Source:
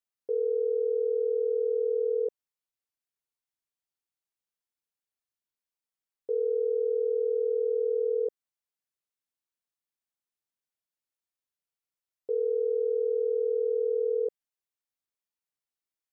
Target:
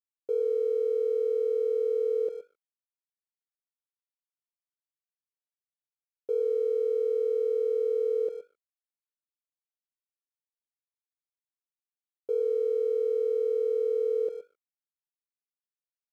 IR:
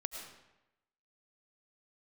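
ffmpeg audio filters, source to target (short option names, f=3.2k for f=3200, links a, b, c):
-filter_complex "[0:a]aecho=1:1:120:0.224,asplit=2[a][b];[1:a]atrim=start_sample=2205,afade=t=out:st=0.32:d=0.01,atrim=end_sample=14553[c];[b][c]afir=irnorm=-1:irlink=0,volume=-17dB[d];[a][d]amix=inputs=2:normalize=0,aeval=exprs='sgn(val(0))*max(abs(val(0))-0.00141,0)':c=same"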